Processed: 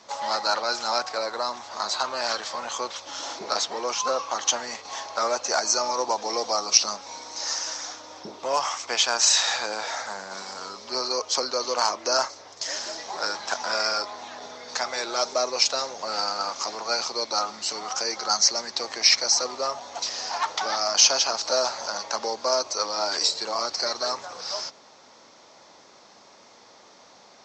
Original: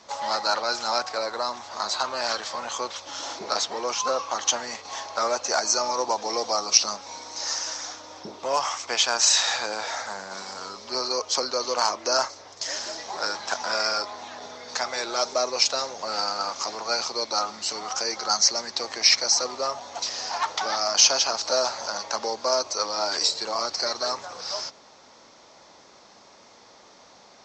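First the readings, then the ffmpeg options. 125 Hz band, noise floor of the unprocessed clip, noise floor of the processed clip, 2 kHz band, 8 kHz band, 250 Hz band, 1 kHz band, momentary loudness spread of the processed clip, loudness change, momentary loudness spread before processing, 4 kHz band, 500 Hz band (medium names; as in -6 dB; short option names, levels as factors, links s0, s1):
no reading, -52 dBFS, -52 dBFS, 0.0 dB, 0.0 dB, -0.5 dB, 0.0 dB, 13 LU, 0.0 dB, 13 LU, 0.0 dB, 0.0 dB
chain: -af "lowshelf=f=63:g=-11"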